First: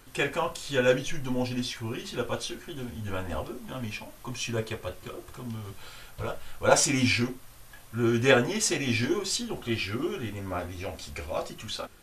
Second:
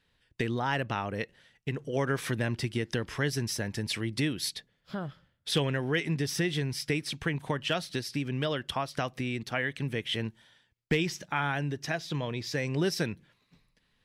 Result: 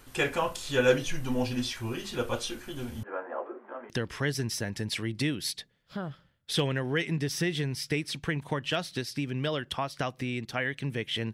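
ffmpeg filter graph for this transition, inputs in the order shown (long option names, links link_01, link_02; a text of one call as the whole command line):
ffmpeg -i cue0.wav -i cue1.wav -filter_complex "[0:a]asettb=1/sr,asplit=3[link_01][link_02][link_03];[link_01]atrim=end=3.034[link_04];[link_02]atrim=start=3.03:end=3.9,asetpts=PTS-STARTPTS,afade=type=in:duration=0.004:curve=qsin,afade=type=out:start_time=0.866:duration=0.004:curve=qsin,asuperpass=centerf=780:order=8:qfactor=0.53[link_05];[link_03]atrim=start=3.896[link_06];[link_04][link_05]acrossfade=duration=0.004:curve1=hsin:curve2=qsin[link_07];[link_07][link_06]acrossfade=duration=0.004:curve1=qsin:curve2=hsin,apad=whole_dur=11.33,atrim=end=11.33,atrim=end=3.902[link_08];[1:a]atrim=start=2.878:end=10.31[link_09];[link_08][link_09]acrossfade=duration=0.004:curve1=hsin:curve2=hsin" out.wav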